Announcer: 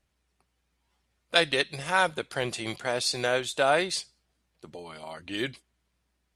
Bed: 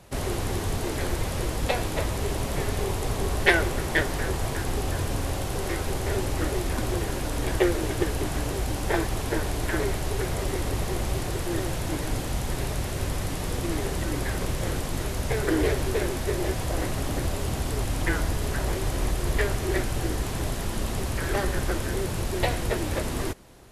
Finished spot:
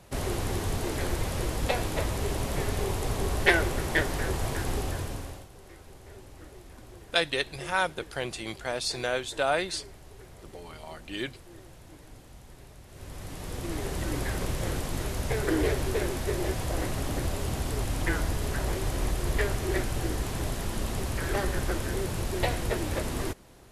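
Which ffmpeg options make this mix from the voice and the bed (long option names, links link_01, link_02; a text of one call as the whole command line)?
ffmpeg -i stem1.wav -i stem2.wav -filter_complex "[0:a]adelay=5800,volume=-3dB[link_01];[1:a]volume=16.5dB,afade=type=out:start_time=4.73:duration=0.75:silence=0.112202,afade=type=in:start_time=12.87:duration=1.26:silence=0.11885[link_02];[link_01][link_02]amix=inputs=2:normalize=0" out.wav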